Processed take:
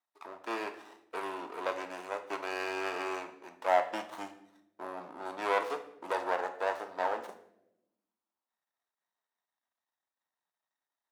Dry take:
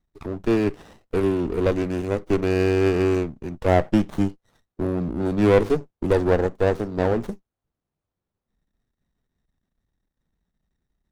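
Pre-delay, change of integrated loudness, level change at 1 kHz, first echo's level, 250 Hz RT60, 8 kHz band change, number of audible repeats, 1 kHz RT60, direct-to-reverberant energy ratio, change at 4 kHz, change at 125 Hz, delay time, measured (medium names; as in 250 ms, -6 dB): 3 ms, -12.5 dB, -2.5 dB, no echo, 1.4 s, no reading, no echo, 0.65 s, 7.0 dB, -6.0 dB, under -35 dB, no echo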